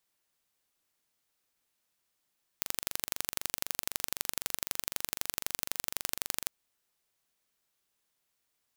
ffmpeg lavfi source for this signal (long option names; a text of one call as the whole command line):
ffmpeg -f lavfi -i "aevalsrc='0.75*eq(mod(n,1845),0)*(0.5+0.5*eq(mod(n,3690),0))':duration=3.89:sample_rate=44100" out.wav